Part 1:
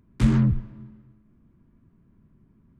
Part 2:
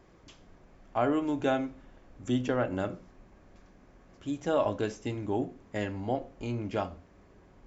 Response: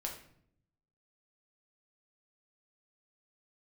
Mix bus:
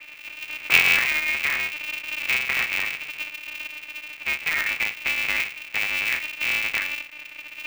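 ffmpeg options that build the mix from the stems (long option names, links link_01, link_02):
-filter_complex "[0:a]acompressor=mode=upward:threshold=-28dB:ratio=2.5,adelay=500,volume=2.5dB[link_01];[1:a]aemphasis=mode=reproduction:type=riaa,acompressor=threshold=-27dB:ratio=2.5,volume=3dB,asplit=3[link_02][link_03][link_04];[link_03]volume=-17.5dB[link_05];[link_04]apad=whole_len=145368[link_06];[link_01][link_06]sidechaincompress=threshold=-35dB:ratio=8:attack=40:release=101[link_07];[2:a]atrim=start_sample=2205[link_08];[link_05][link_08]afir=irnorm=-1:irlink=0[link_09];[link_07][link_02][link_09]amix=inputs=3:normalize=0,lowpass=frequency=2200:width_type=q:width=0.5098,lowpass=frequency=2200:width_type=q:width=0.6013,lowpass=frequency=2200:width_type=q:width=0.9,lowpass=frequency=2200:width_type=q:width=2.563,afreqshift=-2600,aeval=exprs='val(0)*sgn(sin(2*PI*150*n/s))':channel_layout=same"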